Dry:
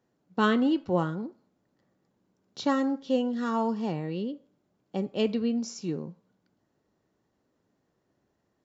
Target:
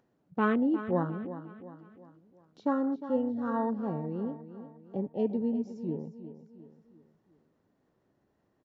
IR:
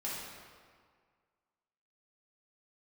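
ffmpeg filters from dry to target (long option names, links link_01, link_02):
-af "lowpass=frequency=2500:poles=1,acompressor=mode=upward:threshold=-37dB:ratio=2.5,afwtdn=0.0224,aecho=1:1:356|712|1068|1424:0.237|0.107|0.048|0.0216,volume=-2.5dB"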